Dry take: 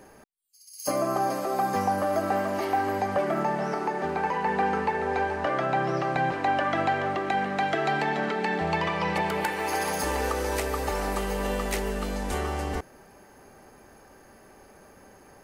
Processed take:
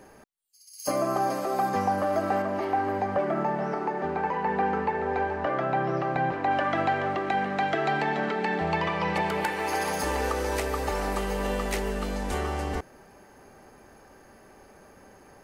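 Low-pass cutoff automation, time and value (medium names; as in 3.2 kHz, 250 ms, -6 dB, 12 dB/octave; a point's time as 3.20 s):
low-pass 6 dB/octave
11 kHz
from 1.69 s 5 kHz
from 2.42 s 1.9 kHz
from 6.51 s 4.8 kHz
from 9.14 s 8.9 kHz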